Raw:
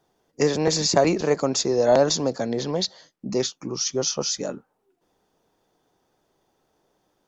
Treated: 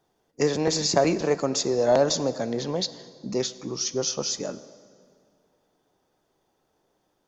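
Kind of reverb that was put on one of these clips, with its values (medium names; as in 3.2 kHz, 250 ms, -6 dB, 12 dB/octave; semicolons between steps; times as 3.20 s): plate-style reverb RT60 2.3 s, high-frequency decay 0.7×, DRR 14 dB; trim -2.5 dB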